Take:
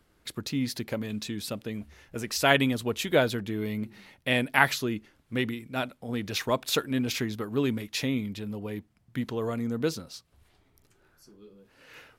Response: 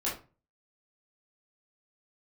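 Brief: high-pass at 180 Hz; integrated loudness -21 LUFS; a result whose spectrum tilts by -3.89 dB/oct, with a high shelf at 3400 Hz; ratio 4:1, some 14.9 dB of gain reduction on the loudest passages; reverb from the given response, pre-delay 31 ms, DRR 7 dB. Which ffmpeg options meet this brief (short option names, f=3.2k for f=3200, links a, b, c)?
-filter_complex "[0:a]highpass=180,highshelf=f=3.4k:g=5,acompressor=threshold=-33dB:ratio=4,asplit=2[a][b];[1:a]atrim=start_sample=2205,adelay=31[c];[b][c]afir=irnorm=-1:irlink=0,volume=-13dB[d];[a][d]amix=inputs=2:normalize=0,volume=15.5dB"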